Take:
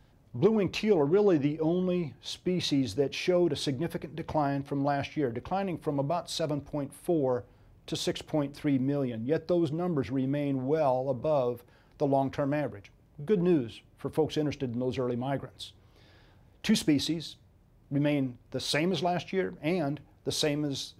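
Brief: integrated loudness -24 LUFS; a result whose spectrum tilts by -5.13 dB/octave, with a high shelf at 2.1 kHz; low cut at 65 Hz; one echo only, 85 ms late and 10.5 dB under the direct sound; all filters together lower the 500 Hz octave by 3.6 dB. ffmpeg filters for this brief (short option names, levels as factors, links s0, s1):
-af "highpass=65,equalizer=f=500:t=o:g=-5,highshelf=f=2100:g=3,aecho=1:1:85:0.299,volume=2.24"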